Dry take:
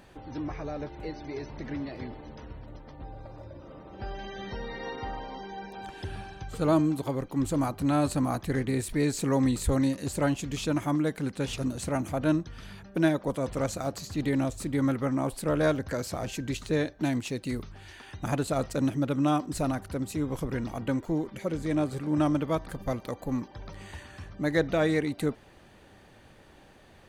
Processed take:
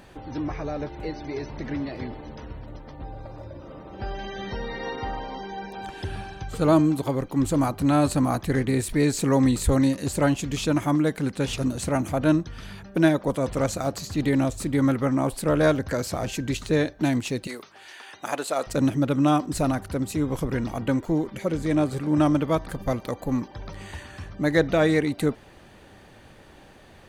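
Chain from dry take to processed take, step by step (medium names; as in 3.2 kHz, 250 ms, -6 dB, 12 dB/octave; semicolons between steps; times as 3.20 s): 17.47–18.67 s: high-pass 500 Hz 12 dB/octave; trim +5 dB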